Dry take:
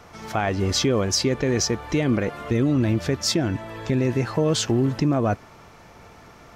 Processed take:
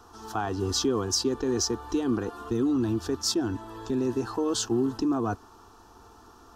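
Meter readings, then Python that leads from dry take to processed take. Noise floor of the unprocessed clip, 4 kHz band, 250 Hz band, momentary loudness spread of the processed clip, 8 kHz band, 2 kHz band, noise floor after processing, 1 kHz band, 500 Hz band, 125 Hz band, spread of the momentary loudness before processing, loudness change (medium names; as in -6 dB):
-48 dBFS, -5.0 dB, -4.0 dB, 7 LU, -3.0 dB, -11.0 dB, -53 dBFS, -4.0 dB, -5.0 dB, -12.0 dB, 5 LU, -5.0 dB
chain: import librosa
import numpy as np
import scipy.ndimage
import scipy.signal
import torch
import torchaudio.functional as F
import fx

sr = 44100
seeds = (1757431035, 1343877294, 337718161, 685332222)

y = fx.fixed_phaser(x, sr, hz=580.0, stages=6)
y = fx.attack_slew(y, sr, db_per_s=540.0)
y = y * librosa.db_to_amplitude(-2.0)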